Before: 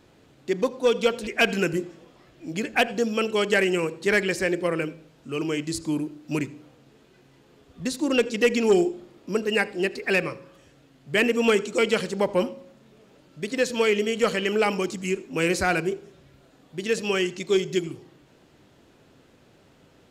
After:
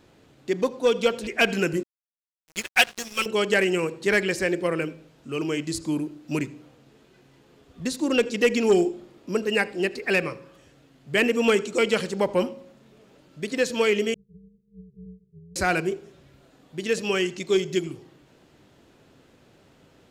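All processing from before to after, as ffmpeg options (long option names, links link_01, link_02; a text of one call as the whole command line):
ffmpeg -i in.wav -filter_complex "[0:a]asettb=1/sr,asplit=3[link_01][link_02][link_03];[link_01]atrim=end=1.834[link_04];[link_02]atrim=start=1.83:end=3.26,asetpts=PTS-STARTPTS,afade=type=in:duration=0.004:curve=qsin,afade=type=out:start_time=1.426:duration=0.004:curve=qsin,tiltshelf=frequency=1200:gain=-8.5,aecho=1:1:5.4:0.74,atrim=end_sample=63063,aeval=exprs='sgn(val(0))*max(abs(val(0))-0.0282,0)':channel_layout=same[link_05];[link_03]atrim=start=3.256[link_06];[link_04][link_05]acrossfade=duration=0.004:curve1=hsin:curve2=qsin[link_07];[link_07][link_06]acrossfade=duration=0.004:curve1=qsin:curve2=hsin,asettb=1/sr,asplit=3[link_08][link_09][link_10];[link_08]atrim=end=14.144[link_11];[link_09]atrim=start=14.14:end=15.56,asetpts=PTS-STARTPTS,afade=type=in:duration=0.004:curve=qsin,afade=type=out:start_time=1.416:duration=0.004:curve=qsin,acompressor=threshold=-32dB:ratio=6:attack=3.2:release=140:knee=1:detection=peak,asuperpass=centerf=160:order=12:qfactor=2.7,tremolo=f=250:d=0.667[link_12];[link_10]atrim=start=15.556[link_13];[link_11][link_12]acrossfade=duration=0.004:curve1=hsin:curve2=qsin[link_14];[link_14][link_13]acrossfade=duration=0.004:curve1=qsin:curve2=hsin" out.wav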